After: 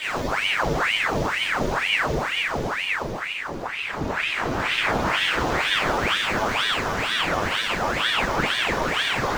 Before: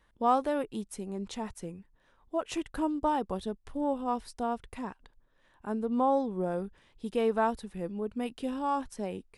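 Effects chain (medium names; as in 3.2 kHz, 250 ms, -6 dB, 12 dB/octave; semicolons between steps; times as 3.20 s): cycle switcher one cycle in 3, inverted; saturation -27.5 dBFS, distortion -10 dB; Paulstretch 38×, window 0.10 s, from 2.92 s; reverberation RT60 1.2 s, pre-delay 13 ms, DRR -7 dB; ring modulator with a swept carrier 1.4 kHz, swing 90%, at 2.1 Hz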